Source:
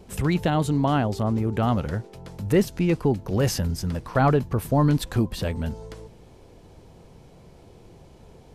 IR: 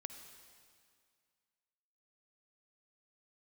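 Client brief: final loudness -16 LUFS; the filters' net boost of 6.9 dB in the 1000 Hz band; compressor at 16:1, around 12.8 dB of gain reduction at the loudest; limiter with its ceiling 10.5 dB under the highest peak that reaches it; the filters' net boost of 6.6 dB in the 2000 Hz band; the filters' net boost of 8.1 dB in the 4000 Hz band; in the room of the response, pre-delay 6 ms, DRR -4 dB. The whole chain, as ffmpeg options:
-filter_complex "[0:a]equalizer=f=1k:t=o:g=8,equalizer=f=2k:t=o:g=3.5,equalizer=f=4k:t=o:g=9,acompressor=threshold=-24dB:ratio=16,alimiter=limit=-24dB:level=0:latency=1,asplit=2[a][b];[1:a]atrim=start_sample=2205,adelay=6[c];[b][c]afir=irnorm=-1:irlink=0,volume=7.5dB[d];[a][d]amix=inputs=2:normalize=0,volume=12.5dB"

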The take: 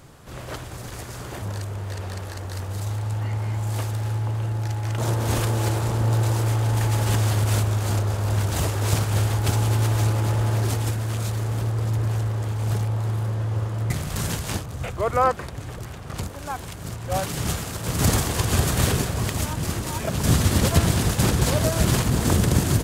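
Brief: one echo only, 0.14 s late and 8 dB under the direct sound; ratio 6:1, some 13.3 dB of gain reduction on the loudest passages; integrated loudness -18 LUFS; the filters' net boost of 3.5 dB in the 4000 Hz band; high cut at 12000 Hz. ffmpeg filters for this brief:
-af "lowpass=12k,equalizer=f=4k:t=o:g=4.5,acompressor=threshold=-29dB:ratio=6,aecho=1:1:140:0.398,volume=14.5dB"

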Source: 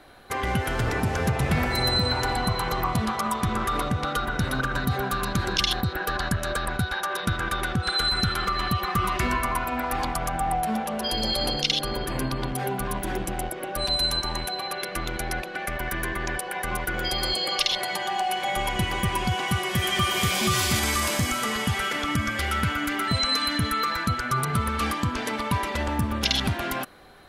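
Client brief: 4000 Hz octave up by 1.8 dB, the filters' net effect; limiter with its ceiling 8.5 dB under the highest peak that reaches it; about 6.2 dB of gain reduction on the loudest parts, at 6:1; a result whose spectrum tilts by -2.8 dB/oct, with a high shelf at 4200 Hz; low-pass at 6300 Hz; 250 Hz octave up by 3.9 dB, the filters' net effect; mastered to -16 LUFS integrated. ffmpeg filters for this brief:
-af "lowpass=6.3k,equalizer=f=250:t=o:g=5,equalizer=f=4k:t=o:g=4.5,highshelf=f=4.2k:g=-3.5,acompressor=threshold=-25dB:ratio=6,volume=14dB,alimiter=limit=-6.5dB:level=0:latency=1"

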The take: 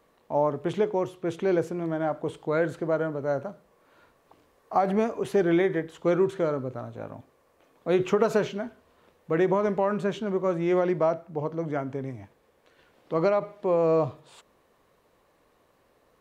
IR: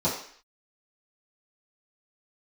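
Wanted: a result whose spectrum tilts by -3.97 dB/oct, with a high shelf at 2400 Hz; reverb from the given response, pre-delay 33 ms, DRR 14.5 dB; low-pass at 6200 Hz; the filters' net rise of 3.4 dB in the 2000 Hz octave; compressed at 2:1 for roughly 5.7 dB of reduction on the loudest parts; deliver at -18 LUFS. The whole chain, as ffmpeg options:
-filter_complex "[0:a]lowpass=6.2k,equalizer=f=2k:t=o:g=6.5,highshelf=f=2.4k:g=-4.5,acompressor=threshold=-28dB:ratio=2,asplit=2[a][b];[1:a]atrim=start_sample=2205,adelay=33[c];[b][c]afir=irnorm=-1:irlink=0,volume=-26dB[d];[a][d]amix=inputs=2:normalize=0,volume=13dB"

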